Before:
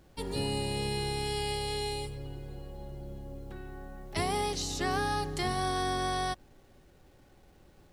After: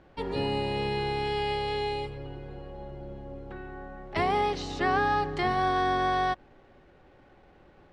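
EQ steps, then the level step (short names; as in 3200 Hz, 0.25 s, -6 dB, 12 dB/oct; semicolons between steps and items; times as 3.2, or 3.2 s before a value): LPF 2300 Hz 12 dB/oct; low shelf 270 Hz -9 dB; +7.5 dB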